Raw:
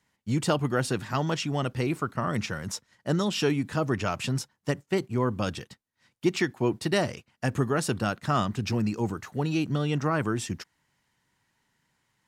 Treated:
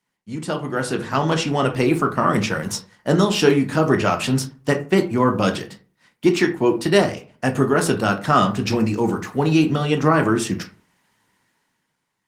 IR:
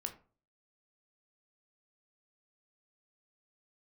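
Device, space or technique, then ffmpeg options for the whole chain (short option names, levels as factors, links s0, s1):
far-field microphone of a smart speaker: -filter_complex "[1:a]atrim=start_sample=2205[s0];[0:a][s0]afir=irnorm=-1:irlink=0,highpass=160,dynaudnorm=f=140:g=13:m=5.31" -ar 48000 -c:a libopus -b:a 24k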